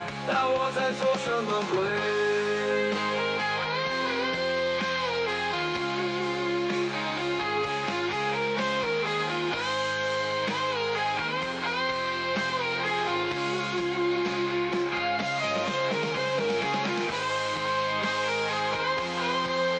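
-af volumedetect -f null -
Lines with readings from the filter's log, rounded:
mean_volume: -27.9 dB
max_volume: -14.5 dB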